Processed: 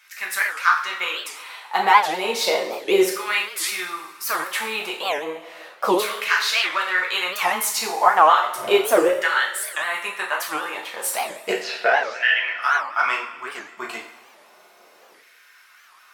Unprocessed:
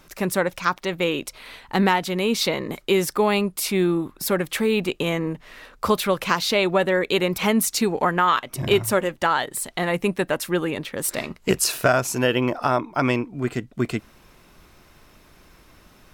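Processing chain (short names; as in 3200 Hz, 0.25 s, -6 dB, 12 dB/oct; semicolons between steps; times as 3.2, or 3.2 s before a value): 11.52–12.58 speaker cabinet 240–4100 Hz, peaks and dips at 260 Hz -4 dB, 380 Hz -7 dB, 580 Hz -9 dB, 1100 Hz -9 dB, 1800 Hz +7 dB; LFO high-pass saw down 0.33 Hz 470–1900 Hz; two-slope reverb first 0.49 s, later 1.9 s, from -16 dB, DRR -3 dB; record warp 78 rpm, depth 250 cents; gain -3.5 dB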